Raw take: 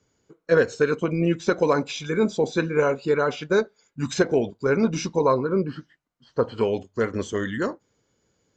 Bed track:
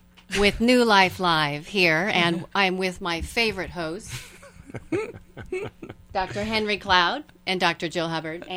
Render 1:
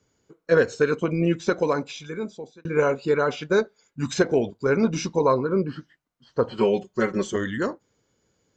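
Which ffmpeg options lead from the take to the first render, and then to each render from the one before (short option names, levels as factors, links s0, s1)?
-filter_complex "[0:a]asettb=1/sr,asplit=3[s0][s1][s2];[s0]atrim=end=6.504[s3];[s1]atrim=start=6.5:end=7.36,asetpts=PTS-STARTPTS,afade=t=in:d=0.004:c=qsin,afade=t=out:st=0.856:d=0.004:c=qsin,aecho=1:1:5.4:0.91,atrim=end_sample=37926[s4];[s2]atrim=start=7.356[s5];[s3][s4]acrossfade=d=0.004:c1=hsin:c2=qsin[s6];[s6][s5]acrossfade=d=0.004:c1=qsin:c2=hsin,asplit=2[s7][s8];[s7]atrim=end=2.65,asetpts=PTS-STARTPTS,afade=t=out:st=1.36:d=1.29[s9];[s8]atrim=start=2.65,asetpts=PTS-STARTPTS,afade=t=in:d=0.004:c=hsin[s10];[s9][s10]concat=n=2:v=0:a=1"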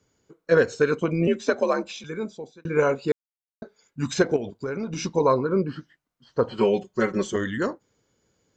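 -filter_complex "[0:a]asettb=1/sr,asplit=3[s0][s1][s2];[s0]atrim=end=1.274[s3];[s1]atrim=start=1.27:end=2.04,asetpts=PTS-STARTPTS,afade=t=in:d=0.004:c=qsin,afade=t=out:st=0.766:d=0.004:c=qsin,afreqshift=60[s4];[s2]atrim=start=2.036[s5];[s3][s4]acrossfade=d=0.004:c1=hsin:c2=qsin[s6];[s6][s5]acrossfade=d=0.004:c1=qsin:c2=hsin,asettb=1/sr,asplit=3[s7][s8][s9];[s7]atrim=end=4.364[s10];[s8]atrim=start=4.36:end=5.05,asetpts=PTS-STARTPTS,afade=t=in:d=0.004:c=qsin,afade=t=out:st=0.686:d=0.004:c=qsin,acompressor=threshold=0.0501:ratio=6:attack=3.2:release=140:knee=1:detection=peak[s11];[s9]atrim=start=5.046[s12];[s10][s11]acrossfade=d=0.004:c1=hsin:c2=qsin[s13];[s13][s12]acrossfade=d=0.004:c1=qsin:c2=hsin,asplit=3[s14][s15][s16];[s14]atrim=end=3.12,asetpts=PTS-STARTPTS,afade=t=out:st=3.116:d=0.004:c=hsin[s17];[s15]atrim=start=3.12:end=3.62,asetpts=PTS-STARTPTS,volume=0[s18];[s16]atrim=start=3.62,asetpts=PTS-STARTPTS,afade=t=in:d=0.004:c=hsin[s19];[s17][s18][s19]concat=n=3:v=0:a=1"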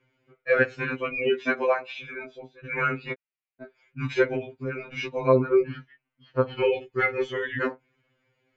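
-af "lowpass=f=2400:t=q:w=3.8,afftfilt=real='re*2.45*eq(mod(b,6),0)':imag='im*2.45*eq(mod(b,6),0)':win_size=2048:overlap=0.75"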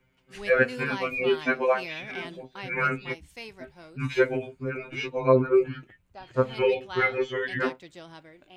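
-filter_complex "[1:a]volume=0.112[s0];[0:a][s0]amix=inputs=2:normalize=0"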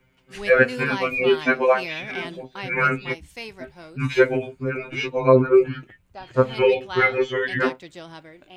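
-af "volume=1.88,alimiter=limit=0.708:level=0:latency=1"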